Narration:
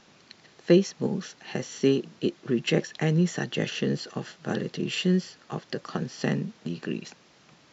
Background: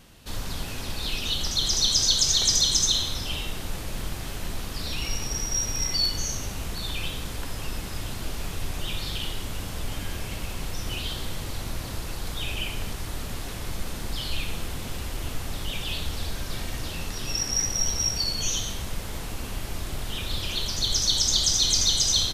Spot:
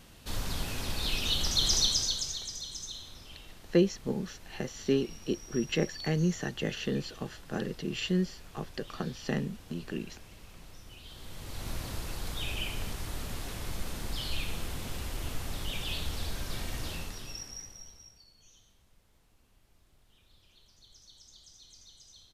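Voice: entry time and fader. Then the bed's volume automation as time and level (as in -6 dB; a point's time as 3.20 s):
3.05 s, -5.0 dB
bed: 1.76 s -2 dB
2.51 s -19 dB
11.01 s -19 dB
11.70 s -4.5 dB
16.93 s -4.5 dB
18.27 s -33.5 dB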